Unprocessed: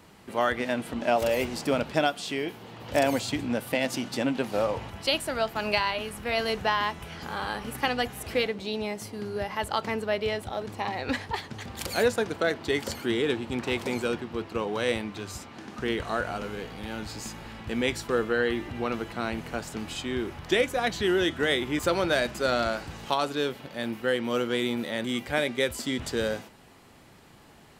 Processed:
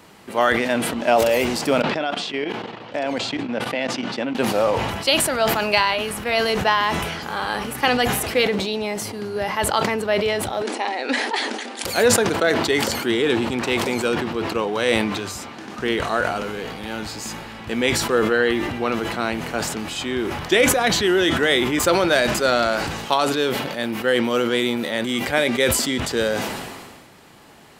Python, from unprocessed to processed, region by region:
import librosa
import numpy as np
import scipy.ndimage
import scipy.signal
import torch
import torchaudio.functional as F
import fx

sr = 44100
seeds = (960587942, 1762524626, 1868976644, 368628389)

y = fx.chain(x, sr, fx.bandpass_edges(low_hz=140.0, high_hz=3900.0),
    fx.level_steps(step_db=15), at=(1.82, 4.35))
y = fx.chain(y, sr, fx.brickwall_bandpass(low_hz=220.0, high_hz=11000.0),
    fx.peak_eq(hz=1100.0, db=-6.5, octaves=0.26), at=(10.62, 11.85))
y = fx.low_shelf(y, sr, hz=130.0, db=-9.5)
y = fx.sustainer(y, sr, db_per_s=35.0)
y = y * librosa.db_to_amplitude(7.0)